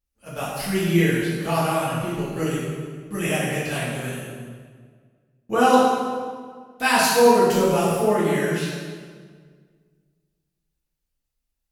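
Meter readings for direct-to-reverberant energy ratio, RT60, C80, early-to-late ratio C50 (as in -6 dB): -9.5 dB, 1.7 s, 1.0 dB, -1.0 dB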